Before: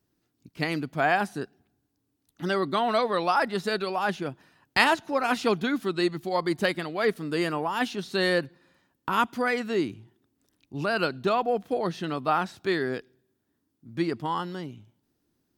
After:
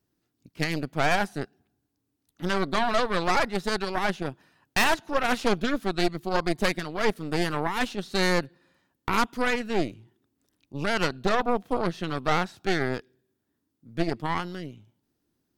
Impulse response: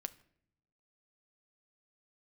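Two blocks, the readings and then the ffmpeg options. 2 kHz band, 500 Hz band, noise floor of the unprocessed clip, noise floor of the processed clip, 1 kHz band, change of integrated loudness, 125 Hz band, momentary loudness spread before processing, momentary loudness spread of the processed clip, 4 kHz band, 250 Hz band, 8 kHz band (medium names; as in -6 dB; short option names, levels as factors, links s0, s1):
+0.5 dB, -1.0 dB, -77 dBFS, -79 dBFS, -0.5 dB, 0.0 dB, +2.5 dB, 10 LU, 10 LU, +1.0 dB, 0.0 dB, +6.5 dB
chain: -af "aeval=exprs='clip(val(0),-1,0.158)':c=same,aeval=exprs='0.316*(cos(1*acos(clip(val(0)/0.316,-1,1)))-cos(1*PI/2))+0.0794*(cos(6*acos(clip(val(0)/0.316,-1,1)))-cos(6*PI/2))':c=same,volume=0.794"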